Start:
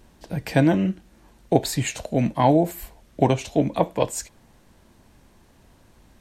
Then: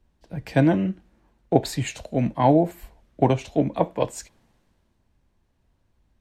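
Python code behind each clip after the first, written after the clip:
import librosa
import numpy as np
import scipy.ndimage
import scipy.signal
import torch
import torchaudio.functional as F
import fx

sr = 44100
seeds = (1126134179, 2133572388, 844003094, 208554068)

y = fx.high_shelf(x, sr, hz=5000.0, db=-10.5)
y = fx.band_widen(y, sr, depth_pct=40)
y = y * librosa.db_to_amplitude(-1.5)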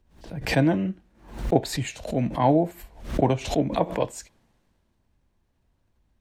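y = fx.pre_swell(x, sr, db_per_s=110.0)
y = y * librosa.db_to_amplitude(-2.5)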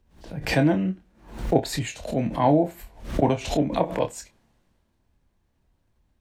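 y = fx.doubler(x, sr, ms=27.0, db=-8)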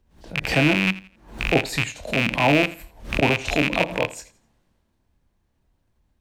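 y = fx.rattle_buzz(x, sr, strikes_db=-30.0, level_db=-9.0)
y = fx.echo_feedback(y, sr, ms=84, feedback_pct=31, wet_db=-18)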